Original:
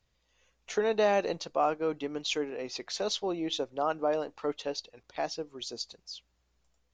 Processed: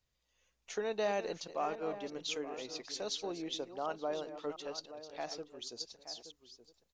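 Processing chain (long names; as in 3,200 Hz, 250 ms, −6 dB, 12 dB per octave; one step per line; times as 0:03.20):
delay that plays each chunk backwards 351 ms, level −11.5 dB
high-shelf EQ 4,800 Hz +6.5 dB, from 0:06.02 +12 dB
slap from a distant wall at 150 metres, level −12 dB
level −8.5 dB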